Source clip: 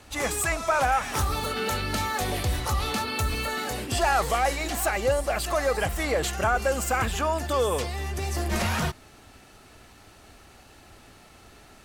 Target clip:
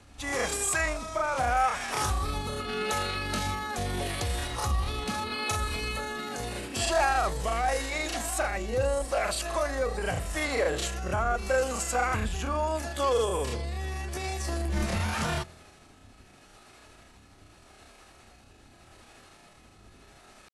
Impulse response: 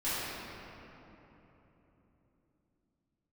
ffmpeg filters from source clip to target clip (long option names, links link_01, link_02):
-filter_complex "[0:a]asetrate=74167,aresample=44100,atempo=0.594604,acrossover=split=590[link_01][link_02];[link_01]aeval=exprs='val(0)*(1-0.5/2+0.5/2*cos(2*PI*1.4*n/s))':channel_layout=same[link_03];[link_02]aeval=exprs='val(0)*(1-0.5/2-0.5/2*cos(2*PI*1.4*n/s))':channel_layout=same[link_04];[link_03][link_04]amix=inputs=2:normalize=0,bandreject=frequency=72.07:width_type=h:width=4,bandreject=frequency=144.14:width_type=h:width=4,bandreject=frequency=216.21:width_type=h:width=4,bandreject=frequency=288.28:width_type=h:width=4,bandreject=frequency=360.35:width_type=h:width=4,bandreject=frequency=432.42:width_type=h:width=4,bandreject=frequency=504.49:width_type=h:width=4,bandreject=frequency=576.56:width_type=h:width=4,bandreject=frequency=648.63:width_type=h:width=4,bandreject=frequency=720.7:width_type=h:width=4,bandreject=frequency=792.77:width_type=h:width=4,bandreject=frequency=864.84:width_type=h:width=4,bandreject=frequency=936.91:width_type=h:width=4,bandreject=frequency=1008.98:width_type=h:width=4,bandreject=frequency=1081.05:width_type=h:width=4,bandreject=frequency=1153.12:width_type=h:width=4,asetrate=25442,aresample=44100"